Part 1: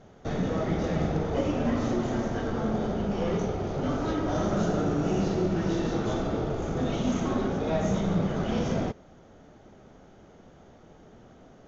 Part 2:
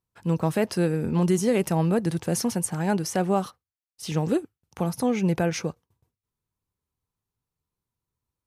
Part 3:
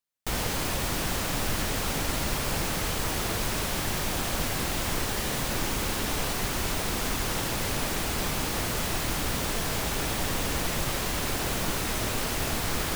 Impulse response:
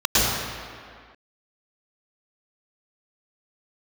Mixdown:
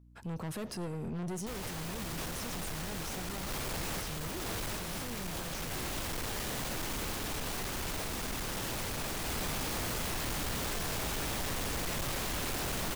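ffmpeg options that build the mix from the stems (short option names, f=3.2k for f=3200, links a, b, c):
-filter_complex "[0:a]adelay=350,volume=-19.5dB[a];[1:a]aeval=exprs='if(lt(val(0),0),0.708*val(0),val(0))':c=same,aeval=exprs='val(0)+0.00141*(sin(2*PI*60*n/s)+sin(2*PI*2*60*n/s)/2+sin(2*PI*3*60*n/s)/3+sin(2*PI*4*60*n/s)/4+sin(2*PI*5*60*n/s)/5)':c=same,volume=1.5dB[b];[2:a]dynaudnorm=f=130:g=11:m=5.5dB,volume=23.5dB,asoftclip=hard,volume=-23.5dB,adelay=1200,volume=-6.5dB[c];[a][b]amix=inputs=2:normalize=0,aeval=exprs='(tanh(25.1*val(0)+0.4)-tanh(0.4))/25.1':c=same,alimiter=level_in=7.5dB:limit=-24dB:level=0:latency=1:release=24,volume=-7.5dB,volume=0dB[d];[c][d]amix=inputs=2:normalize=0,alimiter=level_in=8dB:limit=-24dB:level=0:latency=1,volume=-8dB"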